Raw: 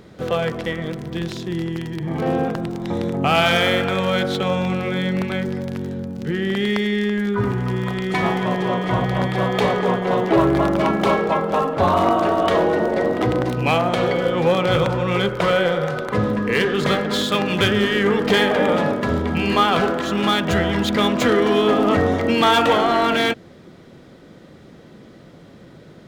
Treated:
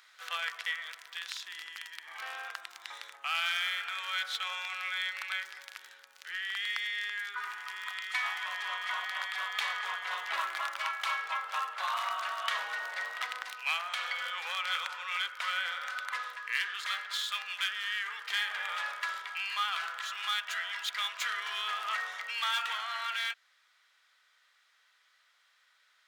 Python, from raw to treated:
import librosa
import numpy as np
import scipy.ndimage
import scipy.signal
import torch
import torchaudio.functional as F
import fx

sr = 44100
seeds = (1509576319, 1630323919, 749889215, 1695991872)

y = scipy.signal.sosfilt(scipy.signal.butter(4, 1300.0, 'highpass', fs=sr, output='sos'), x)
y = fx.rider(y, sr, range_db=4, speed_s=0.5)
y = y * 10.0 ** (-7.5 / 20.0)